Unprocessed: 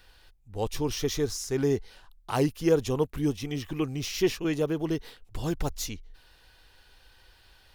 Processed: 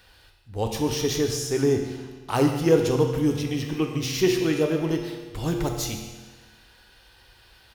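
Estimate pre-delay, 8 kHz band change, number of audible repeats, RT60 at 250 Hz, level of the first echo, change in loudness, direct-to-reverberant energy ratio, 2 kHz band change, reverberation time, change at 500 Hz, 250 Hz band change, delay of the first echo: 8 ms, +4.5 dB, 1, 1.4 s, -15.0 dB, +4.5 dB, 2.5 dB, +5.0 dB, 1.4 s, +5.0 dB, +5.0 dB, 141 ms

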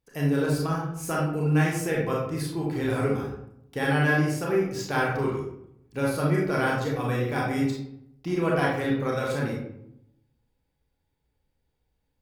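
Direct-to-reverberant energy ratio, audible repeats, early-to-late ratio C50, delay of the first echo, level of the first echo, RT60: -4.5 dB, no echo, 1.5 dB, no echo, no echo, 0.75 s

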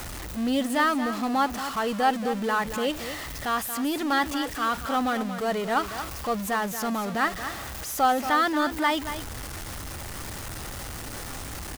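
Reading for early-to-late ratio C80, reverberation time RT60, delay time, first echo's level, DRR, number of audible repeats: no reverb, no reverb, 230 ms, -10.5 dB, no reverb, 1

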